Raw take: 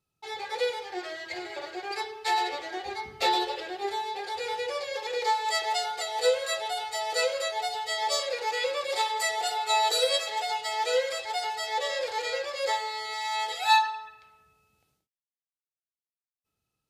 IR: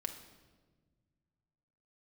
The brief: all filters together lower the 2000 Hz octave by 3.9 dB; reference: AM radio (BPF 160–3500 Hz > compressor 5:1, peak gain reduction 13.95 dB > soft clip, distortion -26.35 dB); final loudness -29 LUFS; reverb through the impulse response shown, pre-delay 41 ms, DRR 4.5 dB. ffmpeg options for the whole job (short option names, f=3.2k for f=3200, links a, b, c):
-filter_complex "[0:a]equalizer=f=2k:t=o:g=-4,asplit=2[a][b];[1:a]atrim=start_sample=2205,adelay=41[c];[b][c]afir=irnorm=-1:irlink=0,volume=-4dB[d];[a][d]amix=inputs=2:normalize=0,highpass=160,lowpass=3.5k,acompressor=threshold=-30dB:ratio=5,asoftclip=threshold=-22.5dB,volume=5.5dB"